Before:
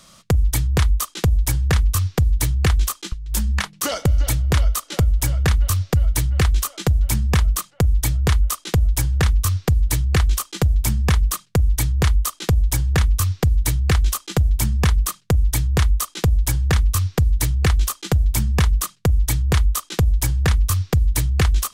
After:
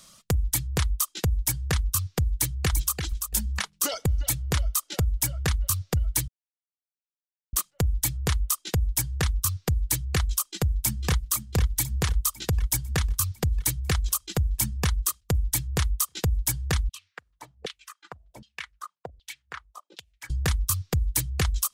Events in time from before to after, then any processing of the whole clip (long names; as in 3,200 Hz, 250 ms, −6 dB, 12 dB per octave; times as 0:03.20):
0:02.35–0:02.94: delay throw 340 ms, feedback 15%, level −5.5 dB
0:06.28–0:07.53: silence
0:10.48–0:11.22: delay throw 500 ms, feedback 70%, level −6.5 dB
0:16.89–0:20.30: auto-filter band-pass saw down 1.3 Hz 490–3,500 Hz
whole clip: reverb reduction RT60 1.2 s; high-shelf EQ 4,400 Hz +8.5 dB; level −7 dB